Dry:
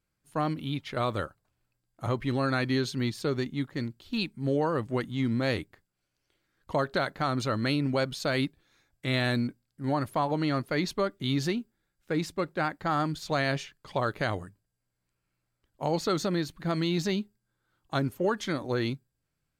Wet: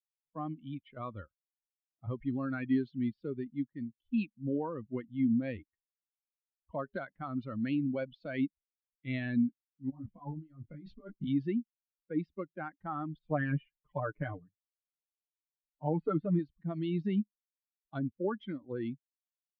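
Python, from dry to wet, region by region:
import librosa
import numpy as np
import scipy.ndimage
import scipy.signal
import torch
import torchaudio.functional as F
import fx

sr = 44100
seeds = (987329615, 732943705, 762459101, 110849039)

y = fx.chain(x, sr, fx.low_shelf(hz=260.0, db=8.5),
    fx.over_compress(threshold_db=-28.0, ratio=-0.5),
    fx.detune_double(cents=26), at=(9.9, 11.27))
y = fx.chain(y, sr, fx.block_float(bits=5),
    fx.lowpass(hz=2300.0, slope=12),
    fx.comb(ms=6.7, depth=0.81), at=(13.19, 16.39))
y = fx.bin_expand(y, sr, power=2.0)
y = scipy.signal.sosfilt(scipy.signal.butter(6, 3100.0, 'lowpass', fs=sr, output='sos'), y)
y = fx.peak_eq(y, sr, hz=230.0, db=11.0, octaves=1.2)
y = y * librosa.db_to_amplitude(-6.5)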